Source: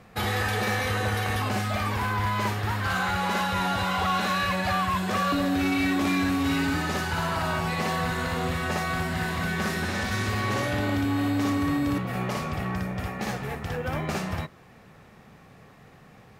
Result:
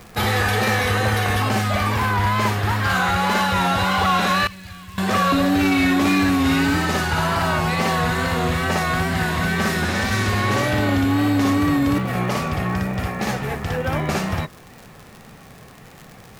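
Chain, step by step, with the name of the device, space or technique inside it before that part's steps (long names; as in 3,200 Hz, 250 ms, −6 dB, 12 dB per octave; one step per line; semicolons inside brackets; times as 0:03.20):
0:04.47–0:04.98: guitar amp tone stack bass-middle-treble 6-0-2
vinyl LP (tape wow and flutter; surface crackle 77 per second −37 dBFS; pink noise bed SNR 32 dB)
level +7 dB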